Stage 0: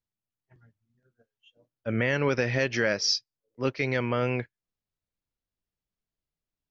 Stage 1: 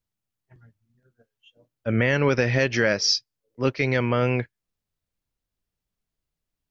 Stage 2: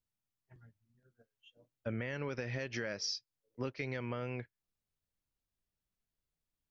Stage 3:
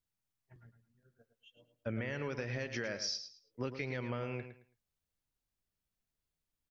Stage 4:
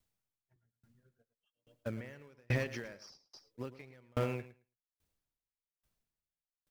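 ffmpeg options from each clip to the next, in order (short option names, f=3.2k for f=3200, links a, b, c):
-af "lowshelf=f=140:g=4,volume=4dB"
-af "acompressor=threshold=-28dB:ratio=10,volume=-6.5dB"
-af "aecho=1:1:109|218|327:0.316|0.0727|0.0167"
-filter_complex "[0:a]asplit=2[a][b];[b]acrusher=samples=20:mix=1:aa=0.000001:lfo=1:lforange=20:lforate=3.2,volume=-11dB[c];[a][c]amix=inputs=2:normalize=0,aeval=exprs='val(0)*pow(10,-39*if(lt(mod(1.2*n/s,1),2*abs(1.2)/1000),1-mod(1.2*n/s,1)/(2*abs(1.2)/1000),(mod(1.2*n/s,1)-2*abs(1.2)/1000)/(1-2*abs(1.2)/1000))/20)':c=same,volume=8dB"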